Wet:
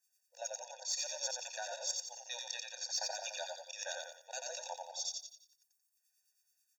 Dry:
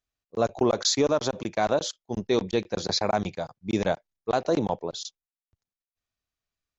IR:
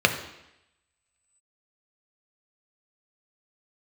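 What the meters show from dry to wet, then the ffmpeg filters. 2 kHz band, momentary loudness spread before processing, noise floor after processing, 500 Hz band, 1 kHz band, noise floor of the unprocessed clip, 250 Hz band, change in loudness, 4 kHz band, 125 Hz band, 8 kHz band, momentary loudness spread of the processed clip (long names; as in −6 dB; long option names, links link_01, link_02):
−9.5 dB, 12 LU, −81 dBFS, −21.5 dB, −17.0 dB, below −85 dBFS, below −40 dB, −13.0 dB, −8.5 dB, below −40 dB, can't be measured, 7 LU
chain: -filter_complex "[0:a]equalizer=frequency=590:width=0.73:gain=-11.5,bandreject=frequency=60:width_type=h:width=6,bandreject=frequency=120:width_type=h:width=6,bandreject=frequency=180:width_type=h:width=6,bandreject=frequency=240:width_type=h:width=6,bandreject=frequency=300:width_type=h:width=6,bandreject=frequency=360:width_type=h:width=6,bandreject=frequency=420:width_type=h:width=6,bandreject=frequency=480:width_type=h:width=6,aexciter=amount=8.3:drive=3.2:freq=5000,areverse,acompressor=threshold=-35dB:ratio=10,areverse,acrossover=split=1900[link_01][link_02];[link_01]aeval=exprs='val(0)*(1-0.7/2+0.7/2*cos(2*PI*9.3*n/s))':channel_layout=same[link_03];[link_02]aeval=exprs='val(0)*(1-0.7/2-0.7/2*cos(2*PI*9.3*n/s))':channel_layout=same[link_04];[link_03][link_04]amix=inputs=2:normalize=0,asplit=2[link_05][link_06];[link_06]highpass=frequency=720:poles=1,volume=8dB,asoftclip=type=tanh:threshold=-23dB[link_07];[link_05][link_07]amix=inputs=2:normalize=0,lowpass=frequency=4500:poles=1,volume=-6dB,asplit=2[link_08][link_09];[link_09]asplit=6[link_10][link_11][link_12][link_13][link_14][link_15];[link_10]adelay=88,afreqshift=-49,volume=-3dB[link_16];[link_11]adelay=176,afreqshift=-98,volume=-10.3dB[link_17];[link_12]adelay=264,afreqshift=-147,volume=-17.7dB[link_18];[link_13]adelay=352,afreqshift=-196,volume=-25dB[link_19];[link_14]adelay=440,afreqshift=-245,volume=-32.3dB[link_20];[link_15]adelay=528,afreqshift=-294,volume=-39.7dB[link_21];[link_16][link_17][link_18][link_19][link_20][link_21]amix=inputs=6:normalize=0[link_22];[link_08][link_22]amix=inputs=2:normalize=0,acrossover=split=170|3000[link_23][link_24][link_25];[link_24]acompressor=threshold=-43dB:ratio=6[link_26];[link_23][link_26][link_25]amix=inputs=3:normalize=0,afftfilt=real='re*eq(mod(floor(b*sr/1024/480),2),1)':imag='im*eq(mod(floor(b*sr/1024/480),2),1)':win_size=1024:overlap=0.75,volume=5dB"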